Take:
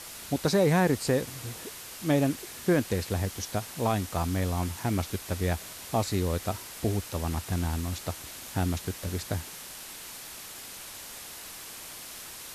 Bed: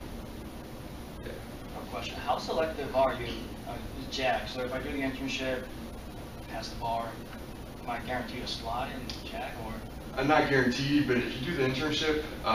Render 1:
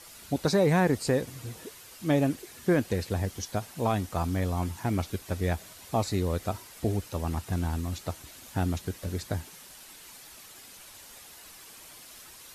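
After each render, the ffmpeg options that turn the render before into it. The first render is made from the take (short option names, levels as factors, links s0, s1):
-af "afftdn=nr=8:nf=-43"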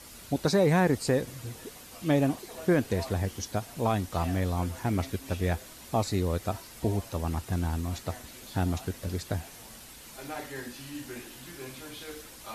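-filter_complex "[1:a]volume=0.188[s0];[0:a][s0]amix=inputs=2:normalize=0"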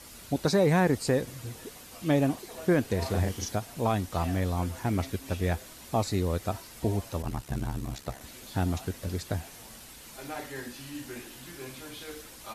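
-filter_complex "[0:a]asplit=3[s0][s1][s2];[s0]afade=t=out:st=3.01:d=0.02[s3];[s1]asplit=2[s4][s5];[s5]adelay=35,volume=0.794[s6];[s4][s6]amix=inputs=2:normalize=0,afade=t=in:st=3.01:d=0.02,afade=t=out:st=3.55:d=0.02[s7];[s2]afade=t=in:st=3.55:d=0.02[s8];[s3][s7][s8]amix=inputs=3:normalize=0,asplit=3[s9][s10][s11];[s9]afade=t=out:st=7.22:d=0.02[s12];[s10]aeval=exprs='val(0)*sin(2*PI*34*n/s)':c=same,afade=t=in:st=7.22:d=0.02,afade=t=out:st=8.2:d=0.02[s13];[s11]afade=t=in:st=8.2:d=0.02[s14];[s12][s13][s14]amix=inputs=3:normalize=0"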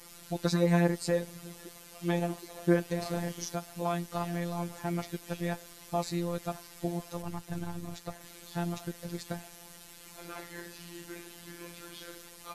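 -af "afftfilt=real='hypot(re,im)*cos(PI*b)':imag='0':win_size=1024:overlap=0.75"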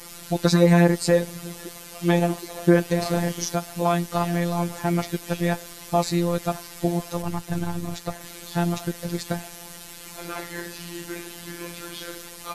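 -af "volume=3.16,alimiter=limit=0.708:level=0:latency=1"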